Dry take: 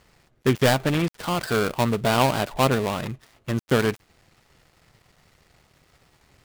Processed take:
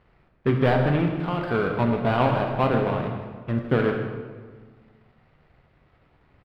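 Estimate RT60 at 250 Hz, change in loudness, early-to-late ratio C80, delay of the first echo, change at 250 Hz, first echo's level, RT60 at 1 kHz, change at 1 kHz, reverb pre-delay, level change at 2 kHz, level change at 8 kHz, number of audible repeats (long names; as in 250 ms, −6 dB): 1.8 s, −0.5 dB, 5.5 dB, 158 ms, +0.5 dB, −12.5 dB, 1.5 s, −1.0 dB, 16 ms, −2.5 dB, below −25 dB, 1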